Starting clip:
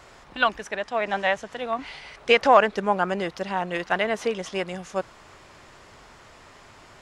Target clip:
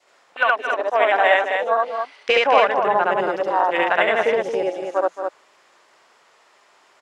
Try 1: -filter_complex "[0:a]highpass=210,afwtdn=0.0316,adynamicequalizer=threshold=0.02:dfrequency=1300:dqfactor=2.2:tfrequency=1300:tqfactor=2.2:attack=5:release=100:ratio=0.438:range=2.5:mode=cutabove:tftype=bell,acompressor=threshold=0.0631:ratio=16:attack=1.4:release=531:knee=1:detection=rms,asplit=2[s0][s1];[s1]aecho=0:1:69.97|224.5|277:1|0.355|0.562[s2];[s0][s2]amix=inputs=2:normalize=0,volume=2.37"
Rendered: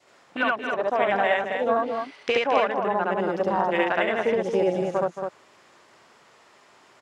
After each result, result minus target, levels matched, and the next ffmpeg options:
250 Hz band +8.5 dB; compression: peak gain reduction +7 dB
-filter_complex "[0:a]highpass=450,afwtdn=0.0316,adynamicequalizer=threshold=0.02:dfrequency=1300:dqfactor=2.2:tfrequency=1300:tqfactor=2.2:attack=5:release=100:ratio=0.438:range=2.5:mode=cutabove:tftype=bell,acompressor=threshold=0.0631:ratio=16:attack=1.4:release=531:knee=1:detection=rms,asplit=2[s0][s1];[s1]aecho=0:1:69.97|224.5|277:1|0.355|0.562[s2];[s0][s2]amix=inputs=2:normalize=0,volume=2.37"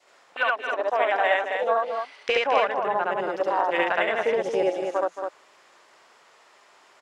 compression: peak gain reduction +6.5 dB
-filter_complex "[0:a]highpass=450,afwtdn=0.0316,adynamicequalizer=threshold=0.02:dfrequency=1300:dqfactor=2.2:tfrequency=1300:tqfactor=2.2:attack=5:release=100:ratio=0.438:range=2.5:mode=cutabove:tftype=bell,acompressor=threshold=0.141:ratio=16:attack=1.4:release=531:knee=1:detection=rms,asplit=2[s0][s1];[s1]aecho=0:1:69.97|224.5|277:1|0.355|0.562[s2];[s0][s2]amix=inputs=2:normalize=0,volume=2.37"

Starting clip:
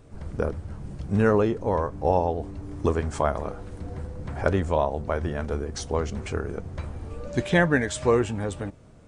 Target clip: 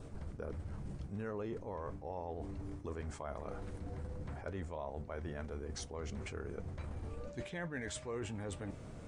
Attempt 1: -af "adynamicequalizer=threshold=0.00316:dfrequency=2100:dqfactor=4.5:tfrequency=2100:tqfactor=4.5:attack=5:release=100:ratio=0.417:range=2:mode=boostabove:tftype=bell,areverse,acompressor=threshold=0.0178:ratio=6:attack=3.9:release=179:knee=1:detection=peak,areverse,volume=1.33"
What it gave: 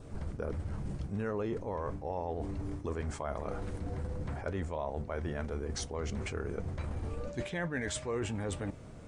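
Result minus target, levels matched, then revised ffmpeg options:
compression: peak gain reduction -6.5 dB
-af "adynamicequalizer=threshold=0.00316:dfrequency=2100:dqfactor=4.5:tfrequency=2100:tqfactor=4.5:attack=5:release=100:ratio=0.417:range=2:mode=boostabove:tftype=bell,areverse,acompressor=threshold=0.0075:ratio=6:attack=3.9:release=179:knee=1:detection=peak,areverse,volume=1.33"

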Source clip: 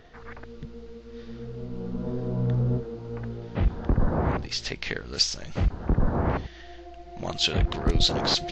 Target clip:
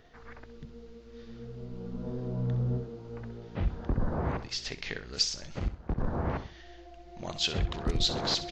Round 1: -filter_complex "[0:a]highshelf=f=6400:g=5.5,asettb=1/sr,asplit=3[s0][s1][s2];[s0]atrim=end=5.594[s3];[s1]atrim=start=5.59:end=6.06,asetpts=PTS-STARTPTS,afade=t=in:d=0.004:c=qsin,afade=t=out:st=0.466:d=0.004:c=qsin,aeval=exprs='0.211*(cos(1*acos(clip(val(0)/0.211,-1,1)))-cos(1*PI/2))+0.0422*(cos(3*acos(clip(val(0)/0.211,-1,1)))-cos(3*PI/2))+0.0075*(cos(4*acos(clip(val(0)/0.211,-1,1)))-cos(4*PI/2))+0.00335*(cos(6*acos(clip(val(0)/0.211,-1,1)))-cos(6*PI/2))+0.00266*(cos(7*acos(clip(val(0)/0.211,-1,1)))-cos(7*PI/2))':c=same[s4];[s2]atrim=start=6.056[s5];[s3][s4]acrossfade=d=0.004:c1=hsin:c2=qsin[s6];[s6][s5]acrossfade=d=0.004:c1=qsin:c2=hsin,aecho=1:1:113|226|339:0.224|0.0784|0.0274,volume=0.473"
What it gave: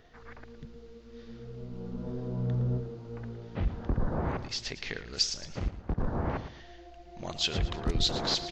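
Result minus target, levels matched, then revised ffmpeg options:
echo 49 ms late
-filter_complex "[0:a]highshelf=f=6400:g=5.5,asettb=1/sr,asplit=3[s0][s1][s2];[s0]atrim=end=5.594[s3];[s1]atrim=start=5.59:end=6.06,asetpts=PTS-STARTPTS,afade=t=in:d=0.004:c=qsin,afade=t=out:st=0.466:d=0.004:c=qsin,aeval=exprs='0.211*(cos(1*acos(clip(val(0)/0.211,-1,1)))-cos(1*PI/2))+0.0422*(cos(3*acos(clip(val(0)/0.211,-1,1)))-cos(3*PI/2))+0.0075*(cos(4*acos(clip(val(0)/0.211,-1,1)))-cos(4*PI/2))+0.00335*(cos(6*acos(clip(val(0)/0.211,-1,1)))-cos(6*PI/2))+0.00266*(cos(7*acos(clip(val(0)/0.211,-1,1)))-cos(7*PI/2))':c=same[s4];[s2]atrim=start=6.056[s5];[s3][s4]acrossfade=d=0.004:c1=hsin:c2=qsin[s6];[s6][s5]acrossfade=d=0.004:c1=qsin:c2=hsin,aecho=1:1:64|128|192:0.224|0.0784|0.0274,volume=0.473"

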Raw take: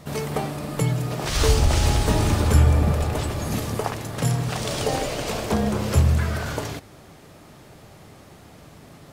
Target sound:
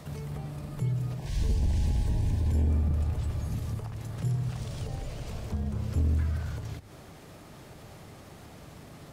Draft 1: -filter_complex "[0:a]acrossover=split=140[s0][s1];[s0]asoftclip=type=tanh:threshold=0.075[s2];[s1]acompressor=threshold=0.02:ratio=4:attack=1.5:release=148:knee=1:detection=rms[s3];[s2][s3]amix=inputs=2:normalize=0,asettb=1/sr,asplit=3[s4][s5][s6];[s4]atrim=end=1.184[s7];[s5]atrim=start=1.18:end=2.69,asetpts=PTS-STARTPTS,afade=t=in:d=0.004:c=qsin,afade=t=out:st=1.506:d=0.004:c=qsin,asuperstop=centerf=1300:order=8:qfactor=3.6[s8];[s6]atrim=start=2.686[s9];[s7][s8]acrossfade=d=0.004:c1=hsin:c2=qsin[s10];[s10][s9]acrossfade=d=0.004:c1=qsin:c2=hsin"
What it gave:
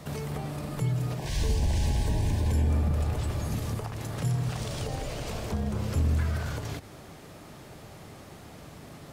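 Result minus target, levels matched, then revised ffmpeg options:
compression: peak gain reduction -8 dB
-filter_complex "[0:a]acrossover=split=140[s0][s1];[s0]asoftclip=type=tanh:threshold=0.075[s2];[s1]acompressor=threshold=0.00596:ratio=4:attack=1.5:release=148:knee=1:detection=rms[s3];[s2][s3]amix=inputs=2:normalize=0,asettb=1/sr,asplit=3[s4][s5][s6];[s4]atrim=end=1.184[s7];[s5]atrim=start=1.18:end=2.69,asetpts=PTS-STARTPTS,afade=t=in:d=0.004:c=qsin,afade=t=out:st=1.506:d=0.004:c=qsin,asuperstop=centerf=1300:order=8:qfactor=3.6[s8];[s6]atrim=start=2.686[s9];[s7][s8]acrossfade=d=0.004:c1=hsin:c2=qsin[s10];[s10][s9]acrossfade=d=0.004:c1=qsin:c2=hsin"

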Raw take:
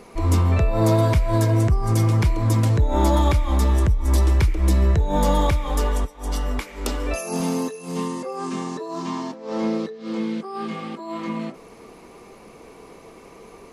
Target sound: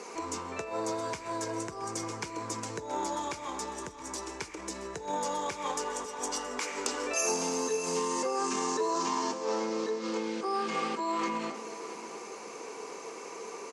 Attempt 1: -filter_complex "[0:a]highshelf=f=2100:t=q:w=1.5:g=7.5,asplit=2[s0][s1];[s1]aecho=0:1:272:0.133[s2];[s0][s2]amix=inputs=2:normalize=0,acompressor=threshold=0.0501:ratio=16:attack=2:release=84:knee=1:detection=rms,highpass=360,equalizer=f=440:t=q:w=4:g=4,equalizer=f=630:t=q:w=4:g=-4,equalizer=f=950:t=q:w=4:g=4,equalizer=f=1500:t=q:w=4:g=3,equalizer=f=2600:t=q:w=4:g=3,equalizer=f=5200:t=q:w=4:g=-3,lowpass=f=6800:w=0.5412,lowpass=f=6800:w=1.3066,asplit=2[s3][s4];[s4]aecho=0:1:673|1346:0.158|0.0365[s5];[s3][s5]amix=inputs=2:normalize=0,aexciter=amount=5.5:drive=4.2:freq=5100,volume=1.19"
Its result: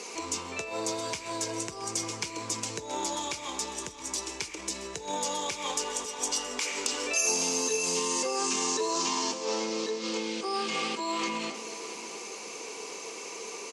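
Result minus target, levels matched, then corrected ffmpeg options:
4 kHz band +5.0 dB
-filter_complex "[0:a]asplit=2[s0][s1];[s1]aecho=0:1:272:0.133[s2];[s0][s2]amix=inputs=2:normalize=0,acompressor=threshold=0.0501:ratio=16:attack=2:release=84:knee=1:detection=rms,highpass=360,equalizer=f=440:t=q:w=4:g=4,equalizer=f=630:t=q:w=4:g=-4,equalizer=f=950:t=q:w=4:g=4,equalizer=f=1500:t=q:w=4:g=3,equalizer=f=2600:t=q:w=4:g=3,equalizer=f=5200:t=q:w=4:g=-3,lowpass=f=6800:w=0.5412,lowpass=f=6800:w=1.3066,asplit=2[s3][s4];[s4]aecho=0:1:673|1346:0.158|0.0365[s5];[s3][s5]amix=inputs=2:normalize=0,aexciter=amount=5.5:drive=4.2:freq=5100,volume=1.19"

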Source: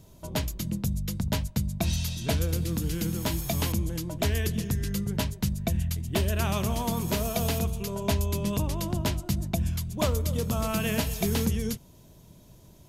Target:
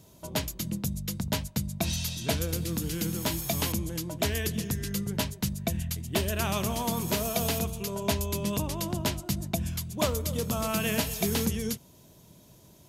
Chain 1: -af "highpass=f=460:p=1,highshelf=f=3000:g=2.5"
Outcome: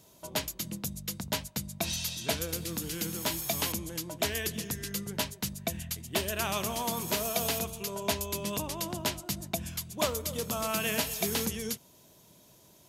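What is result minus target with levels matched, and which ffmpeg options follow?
125 Hz band -6.0 dB
-af "highpass=f=130:p=1,highshelf=f=3000:g=2.5"

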